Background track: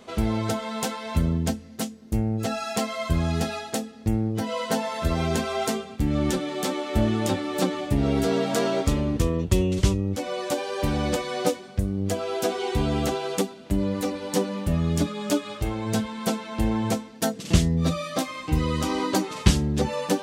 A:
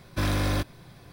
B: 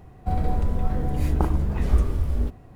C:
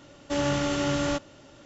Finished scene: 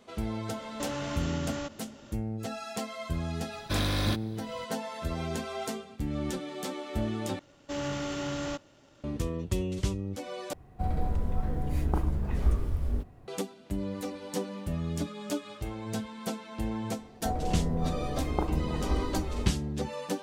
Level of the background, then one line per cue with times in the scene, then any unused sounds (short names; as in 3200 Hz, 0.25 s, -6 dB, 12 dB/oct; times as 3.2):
background track -9 dB
0.5 add C -0.5 dB + compressor, threshold -31 dBFS
3.53 add A -3.5 dB + bell 3800 Hz +8 dB 0.63 oct
7.39 replace with C -10 dB + sample leveller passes 1
10.53 replace with B -6 dB
16.98 add B -11.5 dB + bell 540 Hz +10.5 dB 2.5 oct